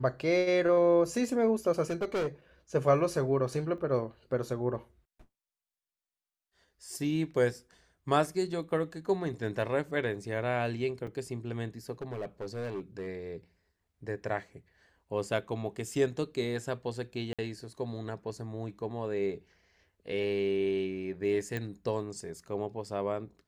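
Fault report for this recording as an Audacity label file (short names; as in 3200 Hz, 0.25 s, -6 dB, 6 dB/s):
1.900000	2.270000	clipped -27.5 dBFS
3.780000	3.780000	gap 2 ms
11.070000	11.070000	gap 4.6 ms
12.020000	13.070000	clipped -32.5 dBFS
17.330000	17.390000	gap 56 ms
21.570000	21.570000	pop -22 dBFS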